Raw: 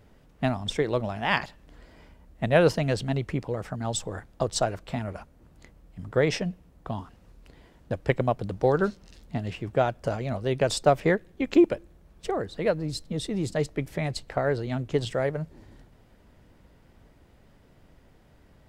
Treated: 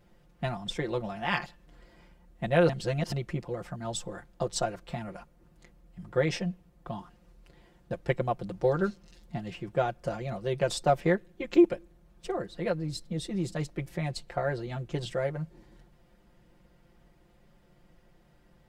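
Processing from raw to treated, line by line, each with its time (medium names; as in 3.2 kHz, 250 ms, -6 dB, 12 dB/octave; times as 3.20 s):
2.69–3.12 s: reverse
whole clip: comb 5.7 ms, depth 85%; trim -6.5 dB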